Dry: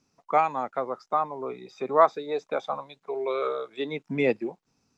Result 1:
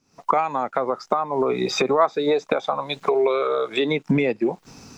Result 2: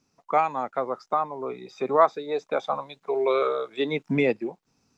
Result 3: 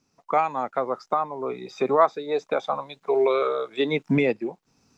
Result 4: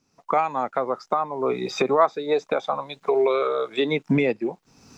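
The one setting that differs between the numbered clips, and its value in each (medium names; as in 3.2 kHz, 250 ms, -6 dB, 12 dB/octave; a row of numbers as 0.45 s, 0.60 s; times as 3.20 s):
recorder AGC, rising by: 85 dB/s, 5.1 dB/s, 14 dB/s, 35 dB/s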